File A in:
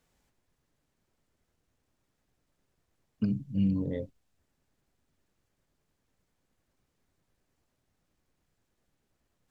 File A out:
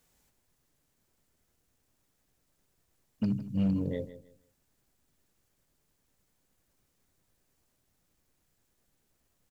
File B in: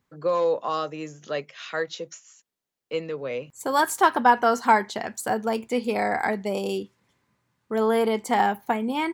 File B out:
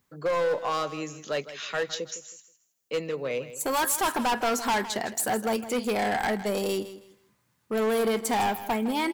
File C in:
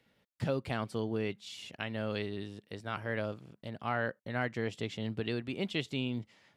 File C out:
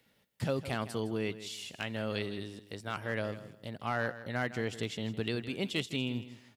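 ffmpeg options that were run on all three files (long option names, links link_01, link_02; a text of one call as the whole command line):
ffmpeg -i in.wav -af "crystalizer=i=1.5:c=0,volume=22.5dB,asoftclip=hard,volume=-22.5dB,aecho=1:1:160|320|480:0.2|0.0499|0.0125" out.wav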